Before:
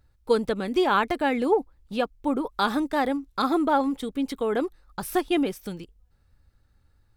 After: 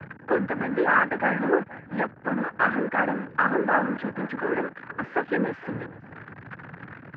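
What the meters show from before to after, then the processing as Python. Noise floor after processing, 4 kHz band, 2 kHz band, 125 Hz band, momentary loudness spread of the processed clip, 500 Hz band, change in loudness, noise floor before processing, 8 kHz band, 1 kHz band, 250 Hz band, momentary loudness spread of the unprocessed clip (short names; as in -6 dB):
-48 dBFS, -14.5 dB, +8.5 dB, +7.0 dB, 20 LU, -2.0 dB, 0.0 dB, -65 dBFS, under -30 dB, 0.0 dB, -2.5 dB, 9 LU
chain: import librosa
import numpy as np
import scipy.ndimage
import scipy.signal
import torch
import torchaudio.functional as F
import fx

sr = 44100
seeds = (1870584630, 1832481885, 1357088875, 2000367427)

p1 = x + 0.5 * 10.0 ** (-26.0 / 20.0) * np.sign(x)
p2 = fx.noise_vocoder(p1, sr, seeds[0], bands=8)
p3 = fx.ladder_lowpass(p2, sr, hz=1900.0, resonance_pct=65)
p4 = p3 + fx.echo_single(p3, sr, ms=468, db=-20.0, dry=0)
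y = F.gain(torch.from_numpy(p4), 6.5).numpy()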